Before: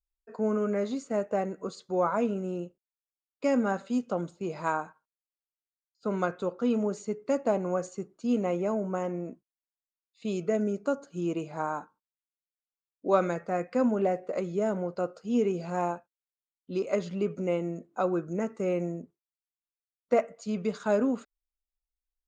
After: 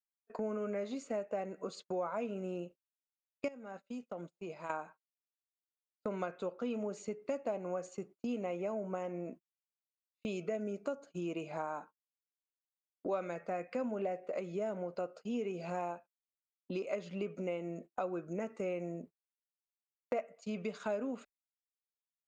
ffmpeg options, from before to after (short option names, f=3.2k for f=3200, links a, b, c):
-filter_complex "[0:a]asettb=1/sr,asplit=3[a][b][c];[a]atrim=end=3.484[d];[b]atrim=start=3.48:end=4.7,asetpts=PTS-STARTPTS,afade=t=in:d=0.004:c=qsin,afade=t=out:st=1.216:d=0.004:c=qsin,acompressor=threshold=-45dB:ratio=3:attack=3.2:release=140:knee=1:detection=peak[e];[c]atrim=start=4.696[f];[d][e]acrossfade=d=0.004:c1=hsin:c2=qsin[g];[g][f]acrossfade=d=0.004:c1=qsin:c2=hsin,agate=range=-38dB:threshold=-45dB:ratio=16:detection=peak,equalizer=f=100:t=o:w=0.67:g=-10,equalizer=f=630:t=o:w=0.67:g=5,equalizer=f=2.5k:t=o:w=0.67:g=8,acompressor=threshold=-42dB:ratio=3,volume=2.5dB"